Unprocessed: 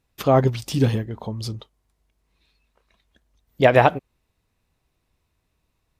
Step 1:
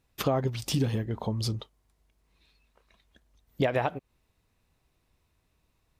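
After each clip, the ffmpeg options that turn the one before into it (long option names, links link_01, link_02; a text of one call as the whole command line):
ffmpeg -i in.wav -af "acompressor=threshold=-23dB:ratio=10" out.wav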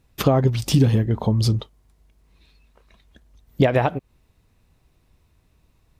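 ffmpeg -i in.wav -af "lowshelf=frequency=340:gain=6.5,volume=6dB" out.wav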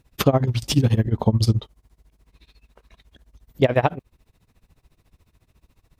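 ffmpeg -i in.wav -filter_complex "[0:a]asplit=2[link_01][link_02];[link_02]alimiter=limit=-13dB:level=0:latency=1:release=443,volume=-2dB[link_03];[link_01][link_03]amix=inputs=2:normalize=0,tremolo=f=14:d=0.91" out.wav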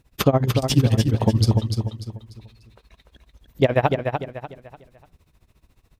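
ffmpeg -i in.wav -af "aecho=1:1:295|590|885|1180:0.501|0.17|0.0579|0.0197" out.wav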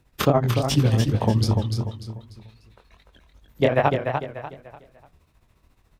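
ffmpeg -i in.wav -filter_complex "[0:a]flanger=delay=20:depth=7:speed=2.6,acrossover=split=230|1600[link_01][link_02][link_03];[link_02]crystalizer=i=8.5:c=0[link_04];[link_01][link_04][link_03]amix=inputs=3:normalize=0,volume=1dB" out.wav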